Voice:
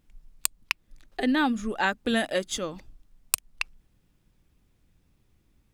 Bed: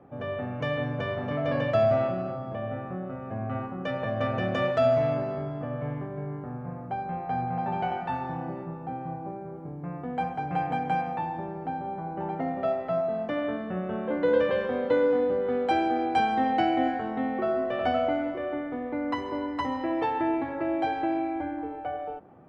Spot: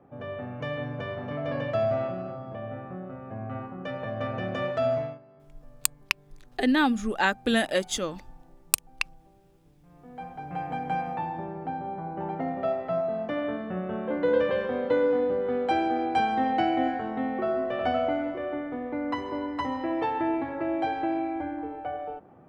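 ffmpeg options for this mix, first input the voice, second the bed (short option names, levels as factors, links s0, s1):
-filter_complex "[0:a]adelay=5400,volume=1.19[s0];[1:a]volume=9.44,afade=t=out:st=4.94:d=0.25:silence=0.1,afade=t=in:st=9.86:d=1.3:silence=0.0707946[s1];[s0][s1]amix=inputs=2:normalize=0"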